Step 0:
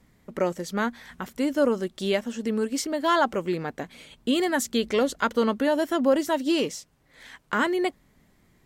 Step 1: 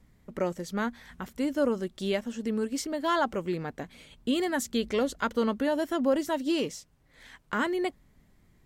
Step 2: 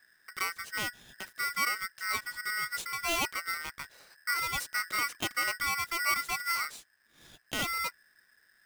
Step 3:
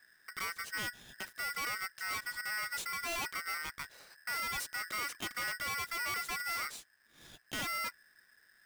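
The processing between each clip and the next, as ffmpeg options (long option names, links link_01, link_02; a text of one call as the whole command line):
ffmpeg -i in.wav -af "lowshelf=frequency=120:gain=9.5,volume=-5dB" out.wav
ffmpeg -i in.wav -af "aeval=exprs='val(0)*sgn(sin(2*PI*1700*n/s))':channel_layout=same,volume=-4.5dB" out.wav
ffmpeg -i in.wav -af "volume=35dB,asoftclip=hard,volume=-35dB" out.wav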